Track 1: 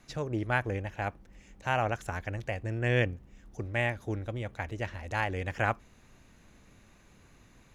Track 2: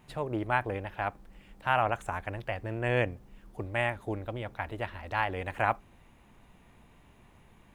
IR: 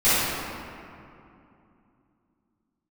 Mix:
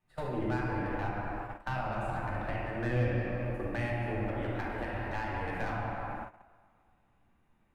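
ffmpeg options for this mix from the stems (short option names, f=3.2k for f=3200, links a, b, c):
-filter_complex "[0:a]asoftclip=type=tanh:threshold=-27dB,lowpass=f=1.5k:t=q:w=2.5,volume=30.5dB,asoftclip=hard,volume=-30.5dB,volume=0.5dB,asplit=2[a][b];[b]volume=-20dB[c];[1:a]asoftclip=type=tanh:threshold=-16dB,volume=-1,volume=-3.5dB,asplit=3[d][e][f];[e]volume=-9.5dB[g];[f]apad=whole_len=341365[h];[a][h]sidechaingate=range=-33dB:threshold=-59dB:ratio=16:detection=peak[i];[2:a]atrim=start_sample=2205[j];[c][g]amix=inputs=2:normalize=0[k];[k][j]afir=irnorm=-1:irlink=0[l];[i][d][l]amix=inputs=3:normalize=0,agate=range=-23dB:threshold=-32dB:ratio=16:detection=peak,acrossover=split=290[m][n];[n]acompressor=threshold=-38dB:ratio=4[o];[m][o]amix=inputs=2:normalize=0"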